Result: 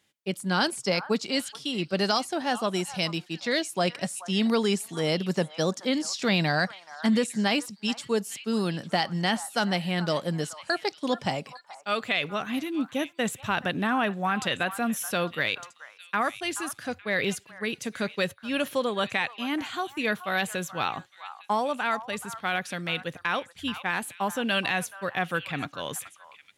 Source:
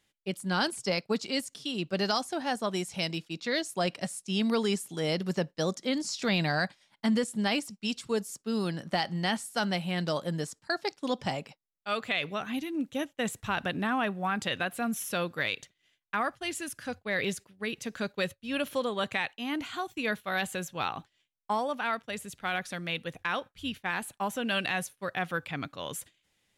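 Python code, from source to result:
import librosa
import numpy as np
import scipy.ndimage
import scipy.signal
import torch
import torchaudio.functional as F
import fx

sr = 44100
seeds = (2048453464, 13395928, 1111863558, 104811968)

p1 = scipy.signal.sosfilt(scipy.signal.butter(2, 85.0, 'highpass', fs=sr, output='sos'), x)
p2 = p1 + fx.echo_stepped(p1, sr, ms=428, hz=1100.0, octaves=1.4, feedback_pct=70, wet_db=-11, dry=0)
y = p2 * librosa.db_to_amplitude(3.5)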